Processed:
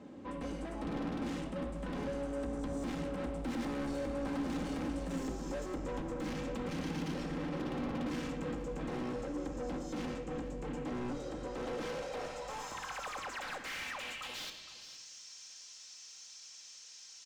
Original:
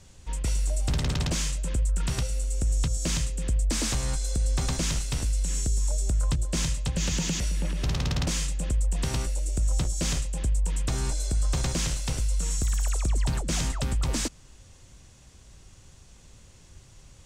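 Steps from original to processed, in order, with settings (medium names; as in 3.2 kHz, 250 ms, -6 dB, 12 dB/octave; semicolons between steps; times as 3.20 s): Doppler pass-by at 5.22 s, 24 m/s, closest 3.4 m; compression 8:1, threshold -49 dBFS, peak gain reduction 23.5 dB; band-pass sweep 290 Hz -> 5.6 kHz, 11.25–15.07 s; overdrive pedal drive 45 dB, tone 2.9 kHz, clips at -49 dBFS; on a send: delay 463 ms -16.5 dB; on the sum: simulated room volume 3600 m³, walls furnished, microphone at 2.1 m; trim +15.5 dB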